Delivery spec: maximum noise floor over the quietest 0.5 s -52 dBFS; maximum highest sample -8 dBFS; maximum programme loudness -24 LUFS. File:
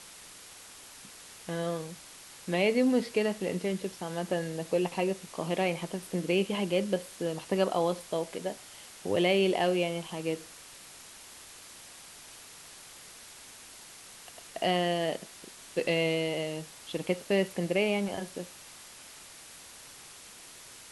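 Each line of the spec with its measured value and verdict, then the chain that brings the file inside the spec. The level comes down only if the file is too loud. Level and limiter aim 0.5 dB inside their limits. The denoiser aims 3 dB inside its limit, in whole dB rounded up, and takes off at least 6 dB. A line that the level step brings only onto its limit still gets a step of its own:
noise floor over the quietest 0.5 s -50 dBFS: fail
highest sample -13.0 dBFS: OK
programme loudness -30.5 LUFS: OK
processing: denoiser 6 dB, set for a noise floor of -50 dBFS

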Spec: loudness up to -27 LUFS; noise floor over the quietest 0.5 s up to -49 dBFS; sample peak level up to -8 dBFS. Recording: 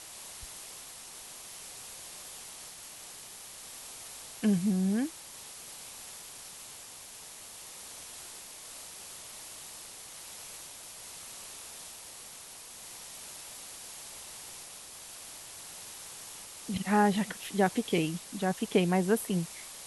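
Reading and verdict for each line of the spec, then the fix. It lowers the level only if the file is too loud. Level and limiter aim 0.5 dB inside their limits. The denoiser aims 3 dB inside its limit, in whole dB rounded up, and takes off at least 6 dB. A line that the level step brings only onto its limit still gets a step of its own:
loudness -36.0 LUFS: OK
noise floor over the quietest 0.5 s -48 dBFS: fail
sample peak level -13.0 dBFS: OK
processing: denoiser 6 dB, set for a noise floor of -48 dBFS

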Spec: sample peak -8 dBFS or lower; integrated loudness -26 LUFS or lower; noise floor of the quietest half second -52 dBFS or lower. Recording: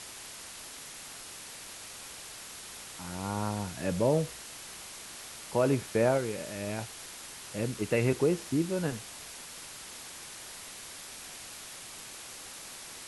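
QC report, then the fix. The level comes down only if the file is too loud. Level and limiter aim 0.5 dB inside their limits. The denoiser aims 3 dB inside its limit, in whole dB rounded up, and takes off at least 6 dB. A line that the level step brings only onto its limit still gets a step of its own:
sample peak -13.0 dBFS: OK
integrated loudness -34.5 LUFS: OK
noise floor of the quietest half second -45 dBFS: fail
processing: denoiser 10 dB, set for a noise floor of -45 dBFS

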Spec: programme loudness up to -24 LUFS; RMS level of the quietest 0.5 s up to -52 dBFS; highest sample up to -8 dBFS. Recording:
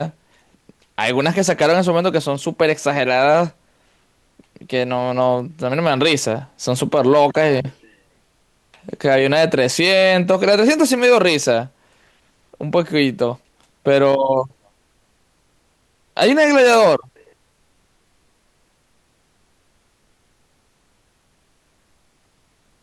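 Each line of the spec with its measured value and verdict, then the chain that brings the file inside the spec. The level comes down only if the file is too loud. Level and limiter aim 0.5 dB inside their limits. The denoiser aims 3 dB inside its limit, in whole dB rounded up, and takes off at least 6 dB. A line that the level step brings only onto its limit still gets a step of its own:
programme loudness -16.0 LUFS: fail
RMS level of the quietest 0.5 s -61 dBFS: OK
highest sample -4.5 dBFS: fail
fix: gain -8.5 dB

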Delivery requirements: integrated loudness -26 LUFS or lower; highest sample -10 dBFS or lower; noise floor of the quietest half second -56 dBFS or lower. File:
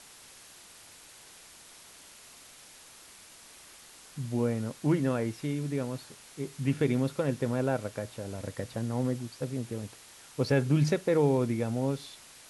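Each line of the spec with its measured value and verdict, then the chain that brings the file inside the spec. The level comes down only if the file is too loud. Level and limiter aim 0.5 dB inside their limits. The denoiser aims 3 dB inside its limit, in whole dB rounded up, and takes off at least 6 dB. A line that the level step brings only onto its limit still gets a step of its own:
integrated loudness -30.5 LUFS: OK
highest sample -13.5 dBFS: OK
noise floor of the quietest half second -53 dBFS: fail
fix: denoiser 6 dB, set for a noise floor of -53 dBFS

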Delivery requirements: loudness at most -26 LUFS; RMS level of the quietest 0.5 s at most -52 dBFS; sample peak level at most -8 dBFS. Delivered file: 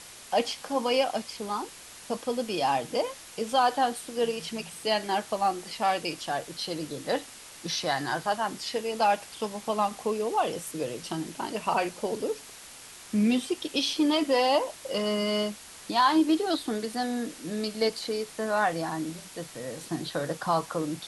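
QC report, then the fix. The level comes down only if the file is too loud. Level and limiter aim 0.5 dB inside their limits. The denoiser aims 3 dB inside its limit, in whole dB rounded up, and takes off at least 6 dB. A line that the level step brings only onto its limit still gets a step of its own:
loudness -29.0 LUFS: OK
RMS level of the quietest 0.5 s -47 dBFS: fail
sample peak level -11.5 dBFS: OK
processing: denoiser 8 dB, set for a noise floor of -47 dBFS

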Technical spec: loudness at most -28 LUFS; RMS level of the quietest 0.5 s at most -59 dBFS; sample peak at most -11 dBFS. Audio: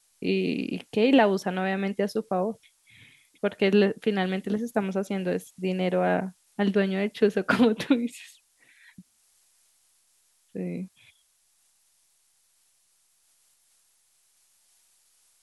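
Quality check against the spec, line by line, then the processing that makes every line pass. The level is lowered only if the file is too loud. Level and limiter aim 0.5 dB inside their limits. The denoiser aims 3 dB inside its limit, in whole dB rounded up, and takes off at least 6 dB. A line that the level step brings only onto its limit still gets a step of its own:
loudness -26.0 LUFS: fail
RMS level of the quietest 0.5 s -67 dBFS: OK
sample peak -6.0 dBFS: fail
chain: gain -2.5 dB; limiter -11.5 dBFS

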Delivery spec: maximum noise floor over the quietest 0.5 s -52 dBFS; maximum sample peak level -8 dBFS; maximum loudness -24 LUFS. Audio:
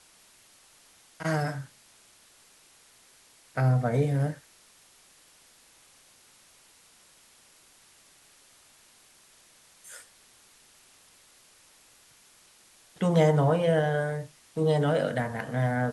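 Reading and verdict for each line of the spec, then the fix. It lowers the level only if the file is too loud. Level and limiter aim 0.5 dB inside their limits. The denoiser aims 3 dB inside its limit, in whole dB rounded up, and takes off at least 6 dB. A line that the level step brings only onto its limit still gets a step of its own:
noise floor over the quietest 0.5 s -59 dBFS: OK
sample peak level -10.0 dBFS: OK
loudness -27.0 LUFS: OK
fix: none

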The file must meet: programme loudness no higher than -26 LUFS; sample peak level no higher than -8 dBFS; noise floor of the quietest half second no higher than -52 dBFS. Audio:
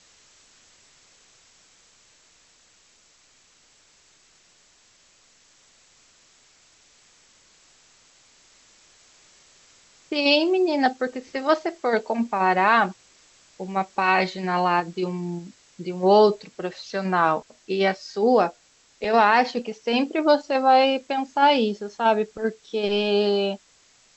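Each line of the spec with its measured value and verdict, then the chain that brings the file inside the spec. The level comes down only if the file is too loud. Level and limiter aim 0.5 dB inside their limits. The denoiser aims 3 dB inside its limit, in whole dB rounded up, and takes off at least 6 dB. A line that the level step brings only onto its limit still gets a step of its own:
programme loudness -22.0 LUFS: fail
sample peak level -5.5 dBFS: fail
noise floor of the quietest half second -58 dBFS: OK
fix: gain -4.5 dB

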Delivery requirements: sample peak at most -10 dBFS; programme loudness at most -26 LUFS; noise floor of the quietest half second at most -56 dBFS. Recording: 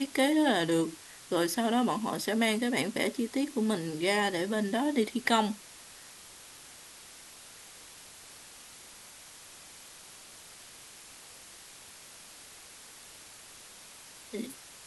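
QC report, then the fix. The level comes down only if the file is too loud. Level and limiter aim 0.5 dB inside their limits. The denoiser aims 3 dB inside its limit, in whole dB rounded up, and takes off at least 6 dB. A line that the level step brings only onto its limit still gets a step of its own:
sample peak -11.0 dBFS: OK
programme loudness -29.5 LUFS: OK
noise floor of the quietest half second -51 dBFS: fail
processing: denoiser 8 dB, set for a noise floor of -51 dBFS

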